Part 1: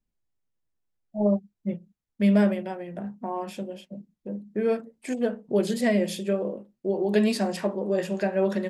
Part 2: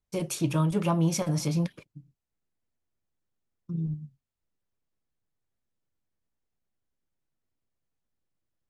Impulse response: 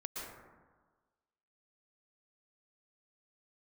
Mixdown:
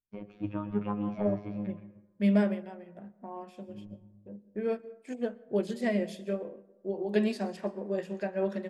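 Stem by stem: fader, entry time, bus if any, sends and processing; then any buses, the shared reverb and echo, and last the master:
-5.0 dB, 0.00 s, send -12 dB, high shelf 8400 Hz -9 dB
-5.0 dB, 0.00 s, send -3.5 dB, LPF 2400 Hz 24 dB/oct; low shelf 140 Hz +5 dB; robotiser 103 Hz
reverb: on, RT60 1.4 s, pre-delay 0.107 s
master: upward expander 1.5:1, over -49 dBFS

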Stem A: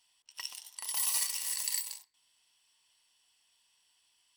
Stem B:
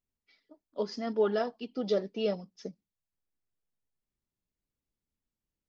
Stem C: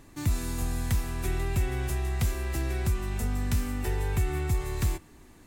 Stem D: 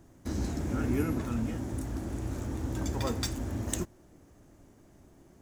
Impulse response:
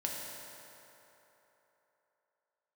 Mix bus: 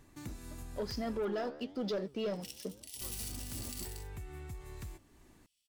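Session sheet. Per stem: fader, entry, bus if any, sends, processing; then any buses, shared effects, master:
-9.0 dB, 2.05 s, no send, spectral whitening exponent 0.6; steep high-pass 2300 Hz; vocal rider within 3 dB 0.5 s
-2.0 dB, 0.00 s, no send, sample leveller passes 2; flange 1 Hz, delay 4.9 ms, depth 10 ms, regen +90%
-8.5 dB, 0.00 s, muted 1.25–3.01, no send, compressor 2.5:1, threshold -38 dBFS, peak gain reduction 11 dB
-10.5 dB, 0.00 s, no send, beating tremolo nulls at 3.6 Hz; auto duck -18 dB, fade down 0.25 s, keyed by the second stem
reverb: off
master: limiter -29.5 dBFS, peak gain reduction 8 dB

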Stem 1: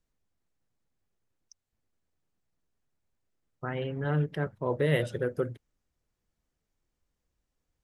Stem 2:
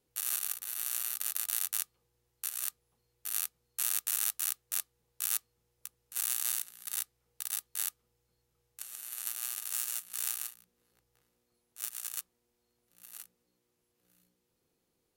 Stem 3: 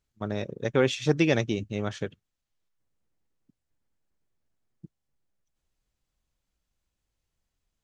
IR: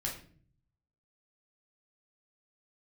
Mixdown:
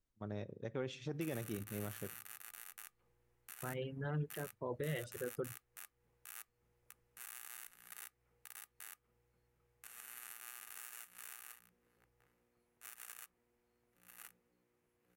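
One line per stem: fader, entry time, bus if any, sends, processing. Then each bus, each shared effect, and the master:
-7.0 dB, 0.00 s, no send, reverb removal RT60 1.6 s
+0.5 dB, 1.05 s, no send, resonant high shelf 2900 Hz -9 dB, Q 1.5; compressor 6:1, threshold -45 dBFS, peak gain reduction 12 dB
-13.0 dB, 0.00 s, send -21 dB, high shelf 2400 Hz -8.5 dB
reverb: on, RT60 0.50 s, pre-delay 5 ms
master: limiter -30.5 dBFS, peak gain reduction 9.5 dB

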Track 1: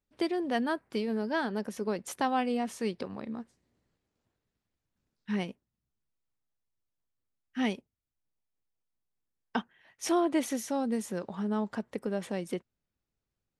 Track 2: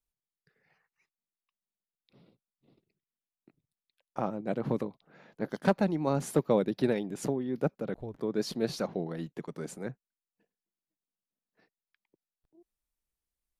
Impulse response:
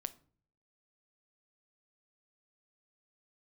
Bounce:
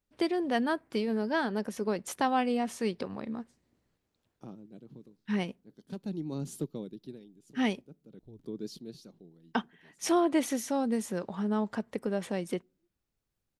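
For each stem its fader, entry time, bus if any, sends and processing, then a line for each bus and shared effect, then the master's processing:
+0.5 dB, 0.00 s, send -19 dB, dry
-5.0 dB, 0.25 s, send -23 dB, band shelf 1100 Hz -13 dB 2.5 oct; auto duck -23 dB, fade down 1.00 s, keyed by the first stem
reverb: on, RT60 0.45 s, pre-delay 6 ms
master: dry

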